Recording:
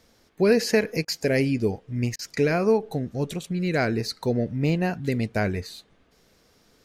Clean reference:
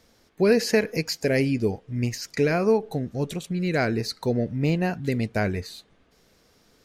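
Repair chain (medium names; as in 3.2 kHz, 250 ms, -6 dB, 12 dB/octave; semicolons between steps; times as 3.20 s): interpolate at 1.05/2.16 s, 29 ms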